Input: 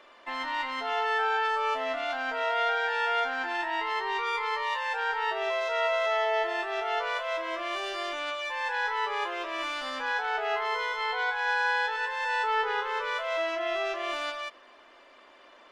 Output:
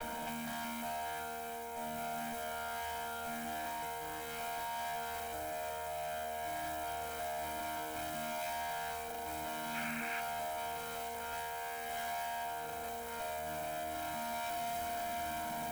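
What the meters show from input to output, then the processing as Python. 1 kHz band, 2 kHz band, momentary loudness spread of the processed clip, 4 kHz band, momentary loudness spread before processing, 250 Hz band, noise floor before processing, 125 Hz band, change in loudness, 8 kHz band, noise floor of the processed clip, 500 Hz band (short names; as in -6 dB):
-9.5 dB, -14.5 dB, 3 LU, -11.5 dB, 6 LU, -0.5 dB, -55 dBFS, n/a, -10.5 dB, +5.5 dB, -43 dBFS, -9.0 dB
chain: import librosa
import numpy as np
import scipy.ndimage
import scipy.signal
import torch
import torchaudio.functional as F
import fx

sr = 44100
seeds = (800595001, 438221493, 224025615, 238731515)

y = fx.chord_vocoder(x, sr, chord='bare fifth', root=51)
y = fx.low_shelf(y, sr, hz=470.0, db=11.5)
y = fx.echo_feedback(y, sr, ms=449, feedback_pct=59, wet_db=-15.5)
y = fx.over_compress(y, sr, threshold_db=-38.0, ratio=-1.0)
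y = fx.mod_noise(y, sr, seeds[0], snr_db=10)
y = fx.peak_eq(y, sr, hz=4600.0, db=-8.5, octaves=0.51)
y = fx.tube_stage(y, sr, drive_db=47.0, bias=0.55)
y = fx.spec_paint(y, sr, seeds[1], shape='noise', start_s=9.74, length_s=0.47, low_hz=1100.0, high_hz=2800.0, level_db=-50.0)
y = y + 0.76 * np.pad(y, (int(1.3 * sr / 1000.0), 0))[:len(y)]
y = y * librosa.db_to_amplitude(6.0)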